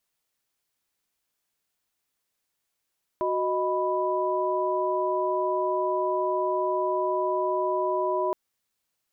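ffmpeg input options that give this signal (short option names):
-f lavfi -i "aevalsrc='0.0422*(sin(2*PI*369.99*t)+sin(2*PI*622.25*t)+sin(2*PI*987.77*t))':d=5.12:s=44100"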